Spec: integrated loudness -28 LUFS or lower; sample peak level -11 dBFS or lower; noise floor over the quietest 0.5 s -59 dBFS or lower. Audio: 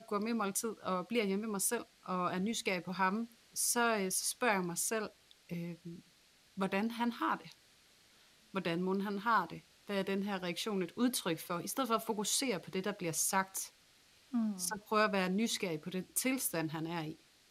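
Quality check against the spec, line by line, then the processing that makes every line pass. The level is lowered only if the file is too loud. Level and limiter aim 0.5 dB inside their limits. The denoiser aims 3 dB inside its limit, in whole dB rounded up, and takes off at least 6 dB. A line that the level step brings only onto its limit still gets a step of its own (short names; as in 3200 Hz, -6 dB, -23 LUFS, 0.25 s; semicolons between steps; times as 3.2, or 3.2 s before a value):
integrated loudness -35.5 LUFS: OK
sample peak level -17.0 dBFS: OK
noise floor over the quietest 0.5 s -66 dBFS: OK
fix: none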